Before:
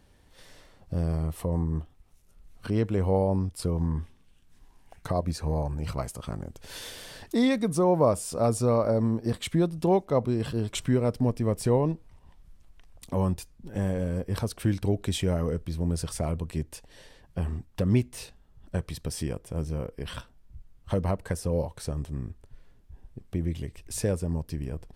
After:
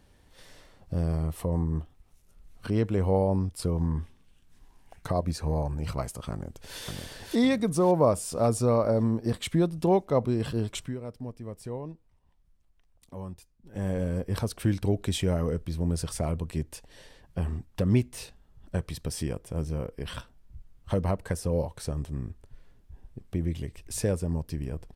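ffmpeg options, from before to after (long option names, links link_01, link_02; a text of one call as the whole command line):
ffmpeg -i in.wav -filter_complex "[0:a]asplit=2[link_01][link_02];[link_02]afade=type=in:start_time=6.31:duration=0.01,afade=type=out:start_time=6.79:duration=0.01,aecho=0:1:560|1120|1680|2240|2800:0.707946|0.283178|0.113271|0.0453085|0.0181234[link_03];[link_01][link_03]amix=inputs=2:normalize=0,asplit=3[link_04][link_05][link_06];[link_04]atrim=end=10.95,asetpts=PTS-STARTPTS,afade=type=out:start_time=10.63:duration=0.32:silence=0.223872[link_07];[link_05]atrim=start=10.95:end=13.63,asetpts=PTS-STARTPTS,volume=-13dB[link_08];[link_06]atrim=start=13.63,asetpts=PTS-STARTPTS,afade=type=in:duration=0.32:silence=0.223872[link_09];[link_07][link_08][link_09]concat=n=3:v=0:a=1" out.wav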